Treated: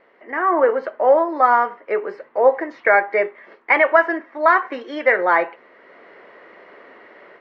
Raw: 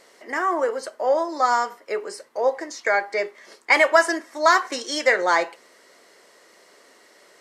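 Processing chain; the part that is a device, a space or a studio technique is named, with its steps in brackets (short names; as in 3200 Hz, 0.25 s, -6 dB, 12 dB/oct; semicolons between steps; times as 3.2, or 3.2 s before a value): action camera in a waterproof case (LPF 2400 Hz 24 dB/oct; AGC gain up to 11 dB; gain -1 dB; AAC 96 kbps 32000 Hz)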